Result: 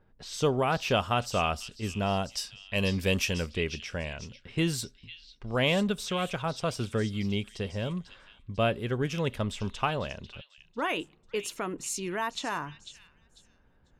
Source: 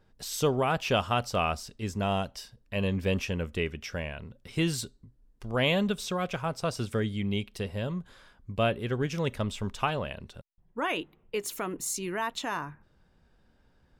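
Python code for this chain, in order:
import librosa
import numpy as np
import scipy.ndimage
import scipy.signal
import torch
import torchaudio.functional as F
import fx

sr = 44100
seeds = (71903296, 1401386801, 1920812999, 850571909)

y = fx.high_shelf(x, sr, hz=2800.0, db=11.5, at=(2.34, 3.46))
y = fx.echo_stepped(y, sr, ms=496, hz=3800.0, octaves=0.7, feedback_pct=70, wet_db=-7)
y = fx.env_lowpass(y, sr, base_hz=2300.0, full_db=-27.0)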